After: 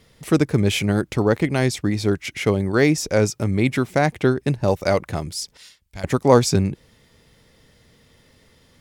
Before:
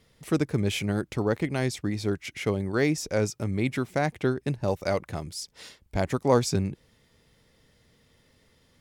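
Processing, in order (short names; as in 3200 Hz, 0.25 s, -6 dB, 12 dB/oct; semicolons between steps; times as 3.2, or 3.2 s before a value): 5.57–6.04 passive tone stack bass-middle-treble 5-5-5; gain +7.5 dB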